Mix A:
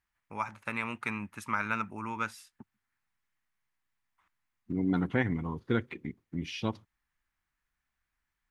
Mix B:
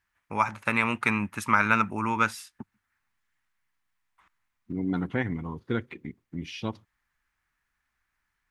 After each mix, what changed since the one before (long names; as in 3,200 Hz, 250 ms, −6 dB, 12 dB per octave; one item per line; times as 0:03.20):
first voice +9.5 dB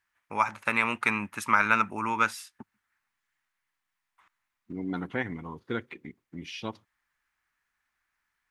master: add low-shelf EQ 220 Hz −10.5 dB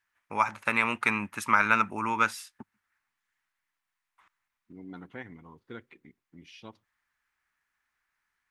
second voice −11.0 dB